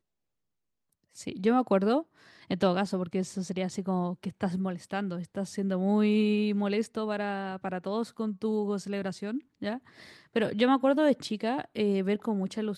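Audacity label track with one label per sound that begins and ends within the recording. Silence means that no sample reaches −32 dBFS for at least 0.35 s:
1.270000	2.010000	sound
2.510000	9.760000	sound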